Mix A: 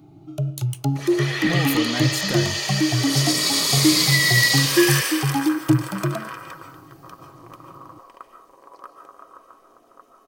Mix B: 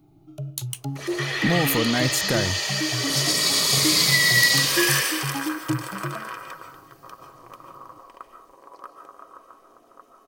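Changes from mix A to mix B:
speech +4.5 dB
first sound −8.5 dB

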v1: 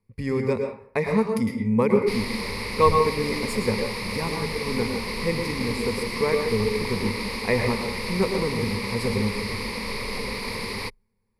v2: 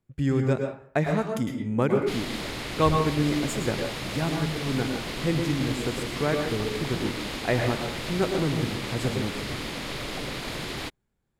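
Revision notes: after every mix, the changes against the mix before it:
master: remove EQ curve with evenly spaced ripples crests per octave 0.89, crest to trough 15 dB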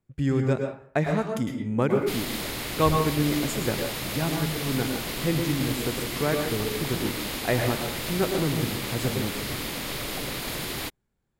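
first sound: remove high-frequency loss of the air 59 metres

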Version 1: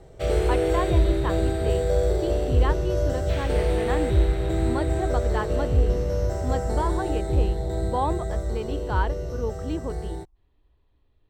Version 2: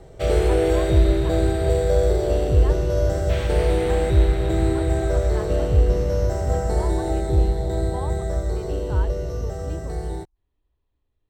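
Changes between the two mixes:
speech −9.0 dB
background +3.5 dB

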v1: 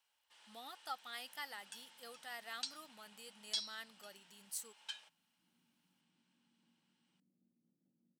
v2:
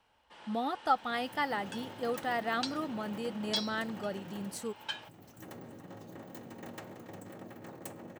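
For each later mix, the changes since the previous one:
second sound: remove flat-topped band-pass 200 Hz, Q 2
master: remove first-order pre-emphasis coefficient 0.97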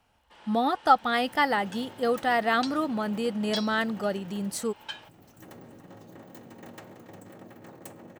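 speech +8.5 dB

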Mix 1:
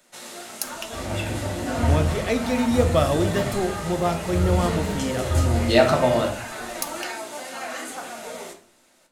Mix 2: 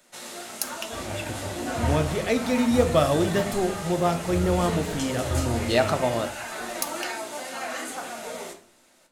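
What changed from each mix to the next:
second sound: send −11.5 dB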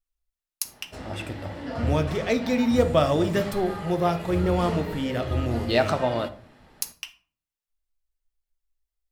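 first sound: muted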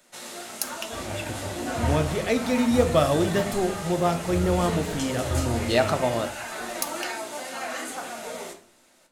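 first sound: unmuted

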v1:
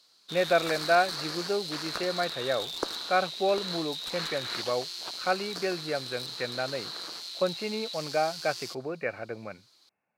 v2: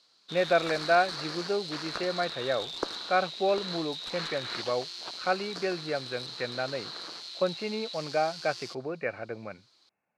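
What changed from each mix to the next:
master: add high-frequency loss of the air 65 metres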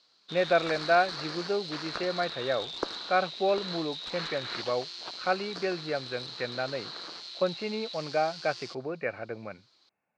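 master: add low-pass filter 6,200 Hz 12 dB per octave

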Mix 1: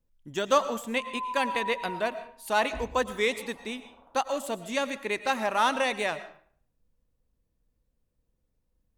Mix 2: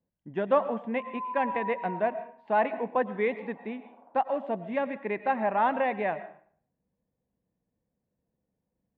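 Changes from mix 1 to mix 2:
background: add linear-phase brick-wall high-pass 190 Hz
master: add loudspeaker in its box 120–2,000 Hz, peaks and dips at 190 Hz +6 dB, 730 Hz +5 dB, 1,300 Hz −9 dB

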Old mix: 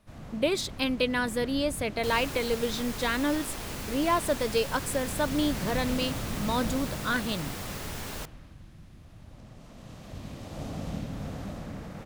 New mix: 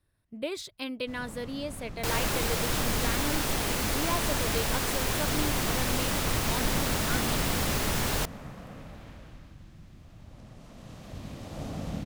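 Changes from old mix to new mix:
speech −7.5 dB
first sound: entry +1.00 s
second sound +9.0 dB

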